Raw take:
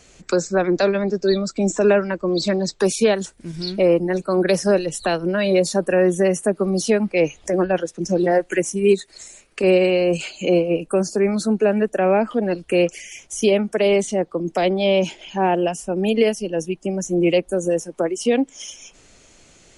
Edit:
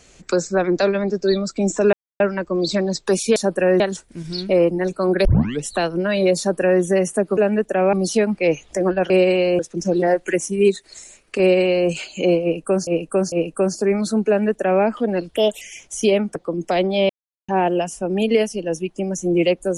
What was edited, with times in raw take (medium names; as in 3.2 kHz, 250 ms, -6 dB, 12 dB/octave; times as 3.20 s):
1.93 s: insert silence 0.27 s
4.54 s: tape start 0.38 s
5.67–6.11 s: copy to 3.09 s
9.64–10.13 s: copy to 7.83 s
10.66–11.11 s: loop, 3 plays
11.61–12.17 s: copy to 6.66 s
12.70–13.01 s: speed 122%
13.75–14.22 s: delete
14.96–15.35 s: mute